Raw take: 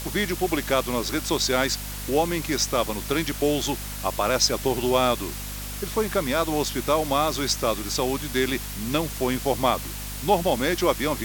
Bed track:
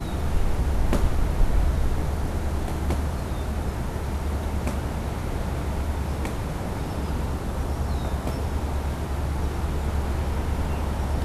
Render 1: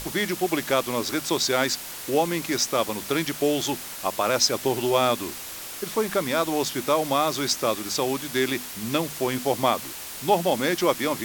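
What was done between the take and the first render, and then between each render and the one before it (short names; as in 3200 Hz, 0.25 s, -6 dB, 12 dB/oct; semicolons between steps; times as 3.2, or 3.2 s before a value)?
notches 50/100/150/200/250 Hz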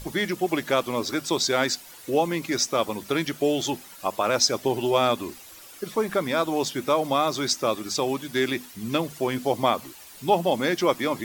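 denoiser 12 dB, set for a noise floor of -37 dBFS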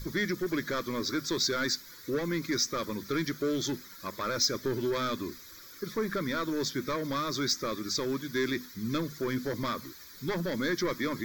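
soft clip -20 dBFS, distortion -11 dB; fixed phaser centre 2800 Hz, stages 6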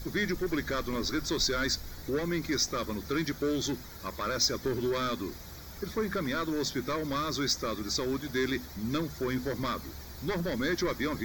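add bed track -20.5 dB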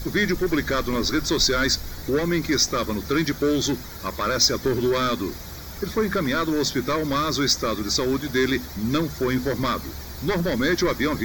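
gain +8.5 dB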